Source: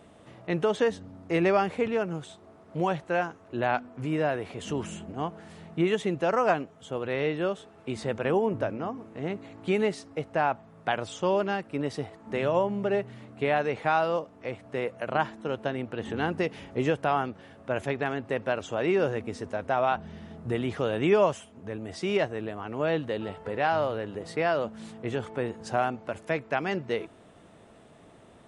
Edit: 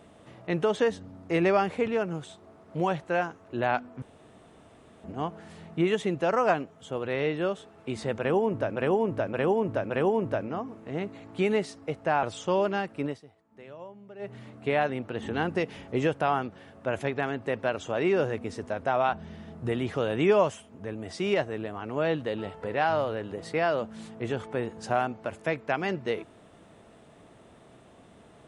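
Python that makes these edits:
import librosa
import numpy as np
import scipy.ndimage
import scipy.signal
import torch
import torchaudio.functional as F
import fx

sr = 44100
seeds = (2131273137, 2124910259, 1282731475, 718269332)

y = fx.edit(x, sr, fx.room_tone_fill(start_s=4.02, length_s=1.02),
    fx.repeat(start_s=8.19, length_s=0.57, count=4),
    fx.cut(start_s=10.52, length_s=0.46),
    fx.fade_down_up(start_s=11.8, length_s=1.29, db=-19.0, fade_s=0.15),
    fx.cut(start_s=13.64, length_s=2.08), tone=tone)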